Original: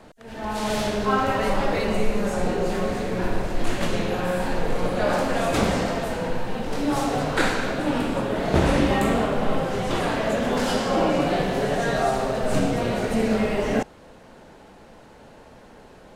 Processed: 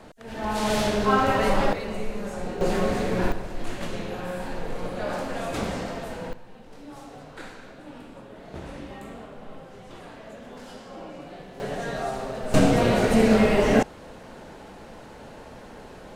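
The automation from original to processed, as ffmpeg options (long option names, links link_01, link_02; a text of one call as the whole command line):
ffmpeg -i in.wav -af "asetnsamples=nb_out_samples=441:pad=0,asendcmd='1.73 volume volume -8dB;2.61 volume volume 1dB;3.32 volume volume -7.5dB;6.33 volume volume -19dB;11.6 volume volume -7.5dB;12.54 volume volume 4dB',volume=1dB" out.wav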